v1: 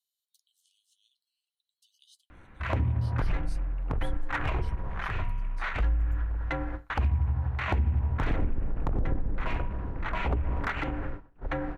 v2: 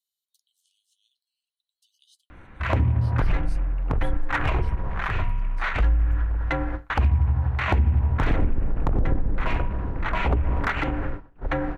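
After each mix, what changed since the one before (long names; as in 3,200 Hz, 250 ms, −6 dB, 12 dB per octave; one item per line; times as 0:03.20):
background +6.0 dB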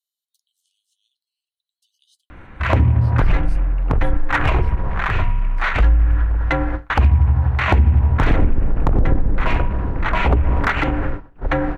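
background +6.5 dB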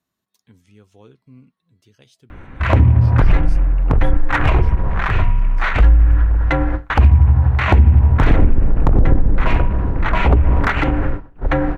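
speech: remove Chebyshev high-pass with heavy ripple 2,900 Hz, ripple 6 dB
background: add low-shelf EQ 500 Hz +3.5 dB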